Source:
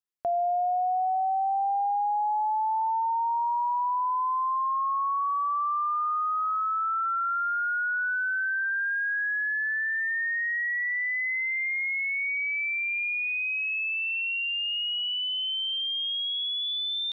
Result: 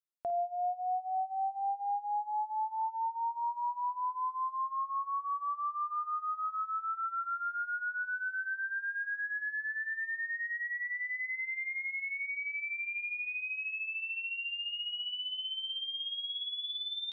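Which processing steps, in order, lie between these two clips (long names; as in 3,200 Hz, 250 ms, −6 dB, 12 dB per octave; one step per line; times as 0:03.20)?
flutter between parallel walls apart 9.1 metres, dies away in 0.35 s
reverb reduction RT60 0.53 s
level −7 dB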